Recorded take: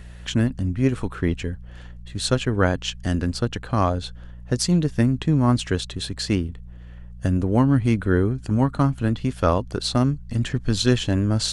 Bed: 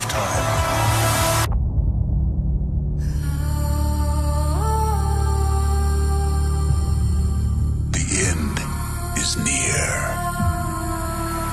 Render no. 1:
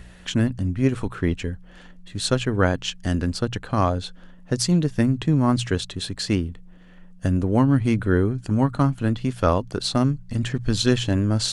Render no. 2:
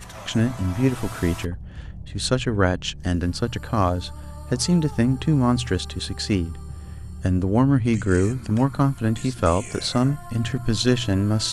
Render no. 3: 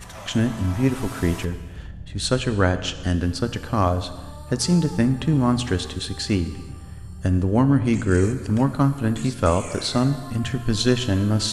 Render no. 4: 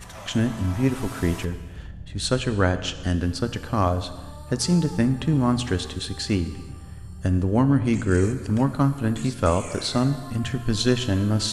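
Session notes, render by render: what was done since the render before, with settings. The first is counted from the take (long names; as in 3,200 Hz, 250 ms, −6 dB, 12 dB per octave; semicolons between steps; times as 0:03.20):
hum removal 60 Hz, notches 2
mix in bed −17 dB
reverb whose tail is shaped and stops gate 480 ms falling, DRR 10.5 dB
level −1.5 dB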